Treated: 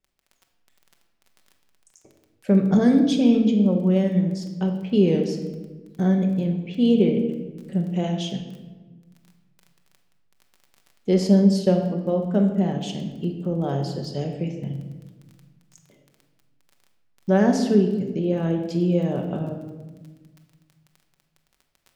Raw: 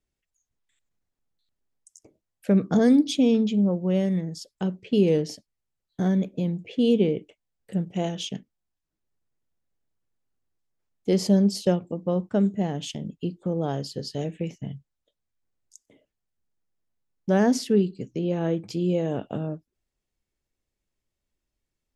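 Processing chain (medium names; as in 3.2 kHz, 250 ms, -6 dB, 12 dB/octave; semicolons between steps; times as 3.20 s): treble shelf 7.2 kHz -8.5 dB; crackle 16 per s -37 dBFS; on a send: reverberation RT60 1.3 s, pre-delay 5 ms, DRR 3 dB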